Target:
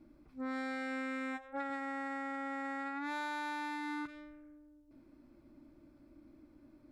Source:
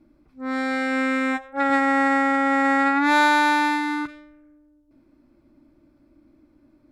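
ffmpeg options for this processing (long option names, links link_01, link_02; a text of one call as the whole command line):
ffmpeg -i in.wav -af "acompressor=threshold=-35dB:ratio=6,volume=-3dB" out.wav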